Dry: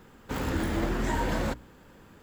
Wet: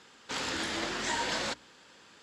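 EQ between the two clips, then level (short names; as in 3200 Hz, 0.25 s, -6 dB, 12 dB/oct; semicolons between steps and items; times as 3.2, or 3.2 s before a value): HPF 550 Hz 6 dB/oct; LPF 9700 Hz 24 dB/oct; bell 4600 Hz +13 dB 2 oct; -2.5 dB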